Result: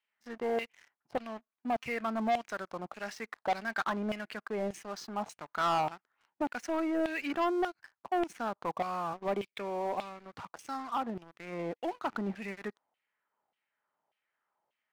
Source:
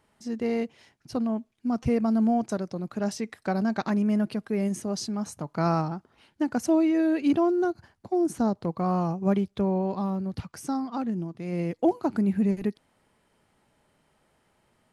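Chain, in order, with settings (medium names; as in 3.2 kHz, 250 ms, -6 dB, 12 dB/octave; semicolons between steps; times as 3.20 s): LFO band-pass saw down 1.7 Hz 700–2900 Hz; 9.13–10.36 s: cabinet simulation 110–8300 Hz, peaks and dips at 180 Hz -5 dB, 880 Hz -7 dB, 1.5 kHz -4 dB, 2.3 kHz +6 dB, 3.7 kHz +4 dB; waveshaping leveller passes 3; trim -2.5 dB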